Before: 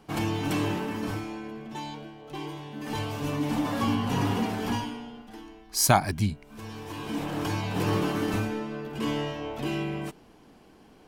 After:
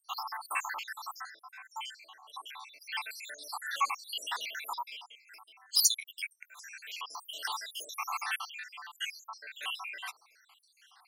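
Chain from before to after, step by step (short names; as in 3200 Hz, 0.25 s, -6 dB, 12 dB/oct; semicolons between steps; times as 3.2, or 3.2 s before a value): random spectral dropouts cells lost 80%; HPF 1100 Hz 24 dB/oct; gain +7.5 dB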